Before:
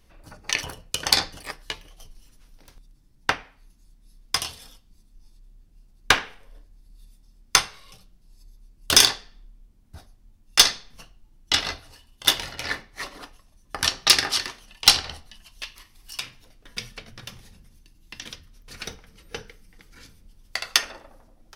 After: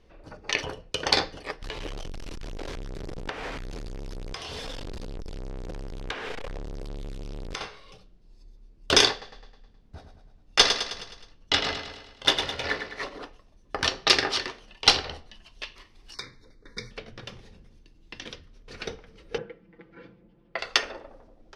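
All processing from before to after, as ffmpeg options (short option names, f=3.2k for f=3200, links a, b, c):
-filter_complex "[0:a]asettb=1/sr,asplit=3[a][b][c];[a]atrim=end=1.624[d];[b]atrim=start=1.62:end=7.61,asetpts=PTS-STARTPTS,afade=t=in:d=0.004:c=qsin,afade=t=out:st=5.986:d=0.004:c=qsin,aeval=exprs='val(0)+0.5*0.0335*sgn(val(0))':c=same,acompressor=threshold=-32dB:ratio=4:attack=3.2:release=140:knee=1:detection=peak[e];[c]atrim=start=7.606[f];[d][e]acrossfade=d=0.004:c1=hsin:c2=qsin[g];[g][f]acrossfade=d=0.004:c1=qsin:c2=hsin,asettb=1/sr,asplit=3[h][i][j];[h]atrim=end=9.114[k];[i]atrim=start=9.11:end=13.09,asetpts=PTS-STARTPTS,afade=t=in:d=0.004:c=qsin,afade=t=out:st=3.976:d=0.004:c=qsin,bandreject=f=350:w=7.2,aecho=1:1:105|210|315|420|525|630:0.398|0.207|0.108|0.056|0.0291|0.0151,atrim=end_sample=175518[l];[j]atrim=start=13.086[m];[k][l]acrossfade=d=0.004:c1=hsin:c2=qsin[n];[n][m]acrossfade=d=0.004:c1=qsin:c2=hsin,asettb=1/sr,asplit=3[o][p][q];[o]atrim=end=16.144[r];[p]atrim=start=16.14:end=16.91,asetpts=PTS-STARTPTS,afade=t=in:d=0.004:c=qsin,afade=t=out:st=0.766:d=0.004:c=qsin,asuperstop=centerf=2900:order=20:qfactor=2.3,equalizer=f=690:w=2.8:g=-13[s];[q]atrim=start=16.906[t];[r][s]acrossfade=d=0.004:c1=hsin:c2=qsin[u];[u][t]acrossfade=d=0.004:c1=qsin:c2=hsin,asettb=1/sr,asplit=3[v][w][x];[v]atrim=end=19.384[y];[w]atrim=start=19.38:end=20.59,asetpts=PTS-STARTPTS,afade=t=in:d=0.004:c=qsin,afade=t=out:st=1.206:d=0.004:c=qsin,highpass=210,lowpass=2.4k,aemphasis=mode=reproduction:type=bsi,aecho=1:1:5.9:0.75,atrim=end_sample=53361[z];[x]atrim=start=20.586[aa];[y][z]acrossfade=d=0.004:c1=hsin:c2=qsin[ab];[ab][aa]acrossfade=d=0.004:c1=qsin:c2=hsin,lowpass=4.5k,equalizer=f=440:w=1.3:g=9,volume=-1dB"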